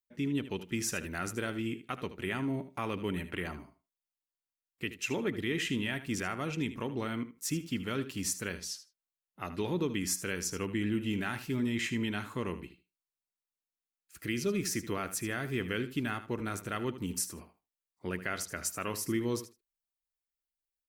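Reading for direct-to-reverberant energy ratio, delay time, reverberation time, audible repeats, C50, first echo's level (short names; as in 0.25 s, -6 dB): none, 77 ms, none, 2, none, -13.0 dB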